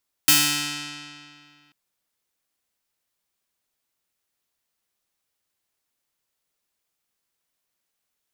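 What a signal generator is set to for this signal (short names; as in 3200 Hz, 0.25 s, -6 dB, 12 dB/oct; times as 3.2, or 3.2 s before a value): plucked string D3, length 1.44 s, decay 2.27 s, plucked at 0.26, bright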